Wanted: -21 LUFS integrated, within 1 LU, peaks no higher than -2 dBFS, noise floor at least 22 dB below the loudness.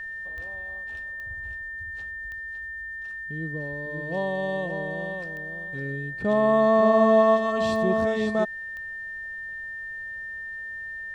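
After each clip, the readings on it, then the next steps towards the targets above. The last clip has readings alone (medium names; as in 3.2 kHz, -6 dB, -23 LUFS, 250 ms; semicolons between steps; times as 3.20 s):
clicks found 6; steady tone 1.8 kHz; tone level -33 dBFS; loudness -26.5 LUFS; peak level -7.5 dBFS; loudness target -21.0 LUFS
-> de-click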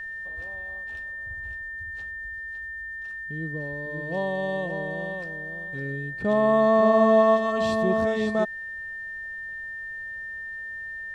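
clicks found 0; steady tone 1.8 kHz; tone level -33 dBFS
-> band-stop 1.8 kHz, Q 30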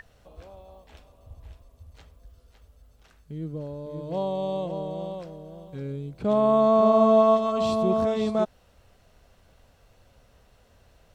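steady tone not found; loudness -24.0 LUFS; peak level -8.0 dBFS; loudness target -21.0 LUFS
-> trim +3 dB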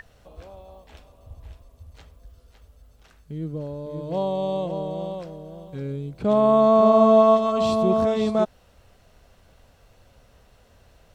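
loudness -21.0 LUFS; peak level -5.0 dBFS; noise floor -57 dBFS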